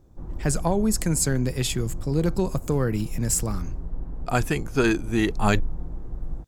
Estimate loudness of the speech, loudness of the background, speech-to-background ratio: −25.0 LKFS, −37.5 LKFS, 12.5 dB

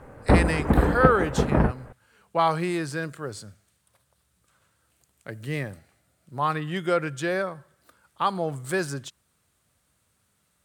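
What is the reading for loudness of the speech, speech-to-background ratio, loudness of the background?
−27.5 LKFS, −4.5 dB, −23.0 LKFS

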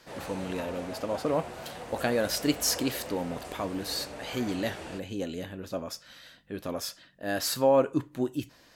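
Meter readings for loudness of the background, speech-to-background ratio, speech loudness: −41.5 LKFS, 10.5 dB, −31.0 LKFS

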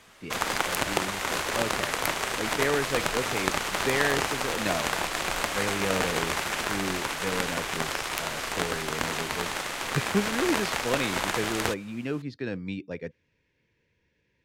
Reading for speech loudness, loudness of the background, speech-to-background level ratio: −33.0 LKFS, −28.5 LKFS, −4.5 dB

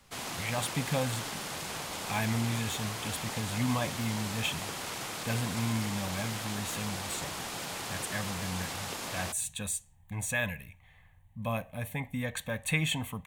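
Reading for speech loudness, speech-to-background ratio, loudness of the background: −34.5 LKFS, 2.0 dB, −36.5 LKFS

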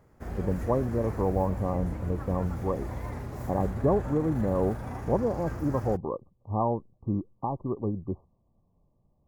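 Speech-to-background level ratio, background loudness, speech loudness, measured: 7.5 dB, −37.5 LKFS, −30.0 LKFS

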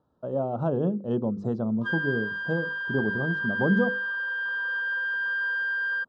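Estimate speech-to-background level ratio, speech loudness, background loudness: 0.0 dB, −28.5 LKFS, −28.5 LKFS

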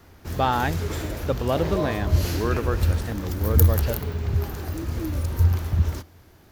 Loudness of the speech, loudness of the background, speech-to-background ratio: −28.5 LKFS, −25.5 LKFS, −3.0 dB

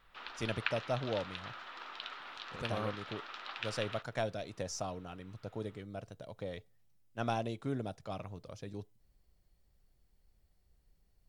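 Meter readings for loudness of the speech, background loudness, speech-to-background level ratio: −40.5 LKFS, −43.5 LKFS, 3.0 dB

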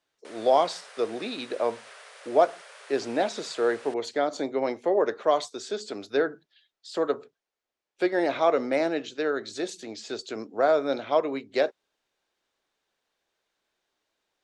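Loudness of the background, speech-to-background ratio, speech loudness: −47.5 LKFS, 20.0 dB, −27.5 LKFS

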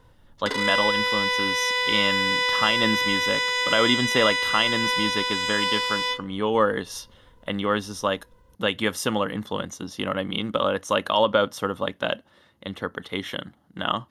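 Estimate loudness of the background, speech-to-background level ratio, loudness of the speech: −22.5 LKFS, −3.5 dB, −26.0 LKFS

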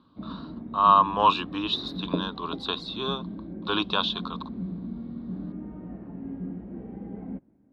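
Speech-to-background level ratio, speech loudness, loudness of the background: 12.0 dB, −25.5 LKFS, −37.5 LKFS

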